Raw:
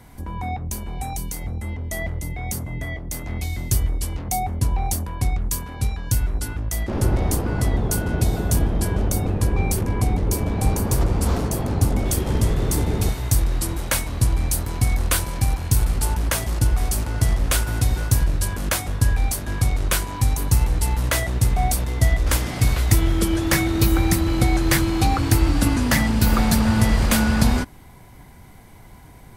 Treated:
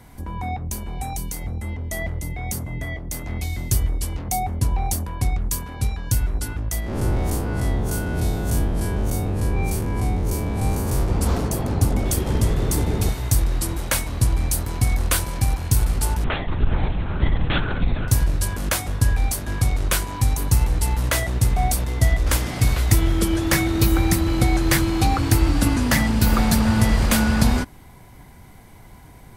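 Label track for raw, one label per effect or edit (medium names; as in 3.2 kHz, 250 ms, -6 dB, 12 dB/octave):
6.800000	11.080000	spectral blur width 83 ms
16.240000	18.080000	LPC vocoder at 8 kHz whisper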